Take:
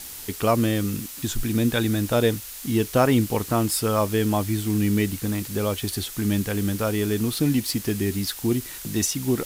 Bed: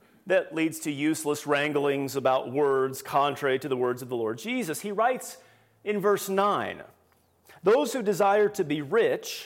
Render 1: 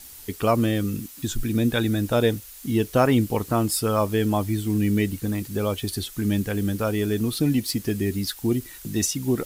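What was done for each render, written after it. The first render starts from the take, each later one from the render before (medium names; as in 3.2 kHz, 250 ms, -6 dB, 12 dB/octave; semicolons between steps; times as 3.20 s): noise reduction 8 dB, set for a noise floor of -38 dBFS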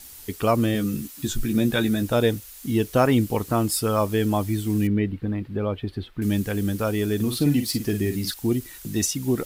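0.73–2.03 s: doubling 14 ms -6 dB; 4.87–6.22 s: distance through air 430 m; 7.15–8.34 s: doubling 48 ms -8 dB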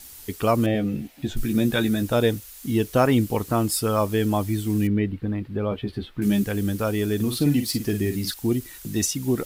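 0.66–1.37 s: FFT filter 390 Hz 0 dB, 720 Hz +11 dB, 1.1 kHz -7 dB, 2.2 kHz +2 dB, 7.2 kHz -15 dB; 5.70–6.44 s: doubling 15 ms -3.5 dB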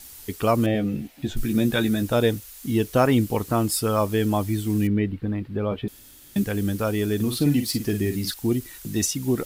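5.88–6.36 s: room tone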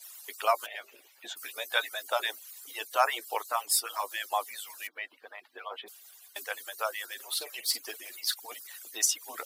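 harmonic-percussive separation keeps percussive; high-pass 660 Hz 24 dB/octave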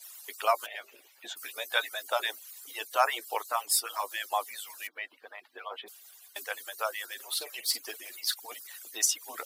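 no audible change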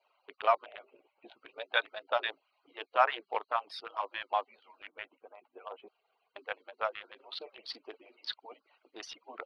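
local Wiener filter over 25 samples; inverse Chebyshev low-pass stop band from 7 kHz, stop band 40 dB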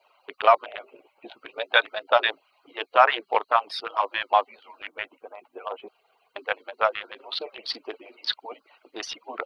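trim +11 dB; peak limiter -3 dBFS, peak gain reduction 3 dB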